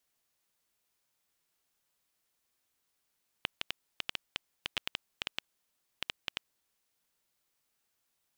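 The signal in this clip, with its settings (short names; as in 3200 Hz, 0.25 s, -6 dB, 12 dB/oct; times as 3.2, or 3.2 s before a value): random clicks 6.6/s -14 dBFS 2.99 s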